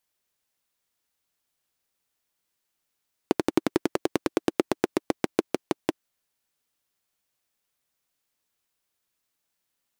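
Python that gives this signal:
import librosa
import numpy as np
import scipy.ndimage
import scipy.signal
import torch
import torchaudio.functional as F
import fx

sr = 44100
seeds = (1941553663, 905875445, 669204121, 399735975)

y = fx.engine_single_rev(sr, seeds[0], length_s=2.74, rpm=1400, resonances_hz=(330.0,), end_rpm=600)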